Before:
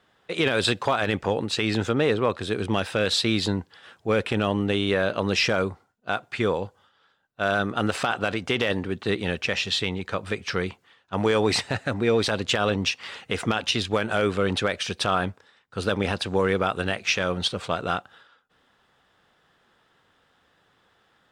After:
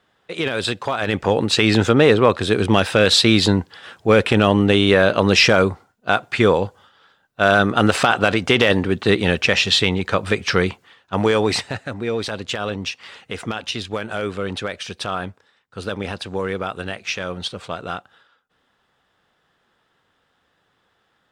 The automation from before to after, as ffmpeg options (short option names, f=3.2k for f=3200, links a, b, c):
-af "volume=9dB,afade=t=in:st=0.93:d=0.57:silence=0.354813,afade=t=out:st=10.62:d=1.24:silence=0.281838"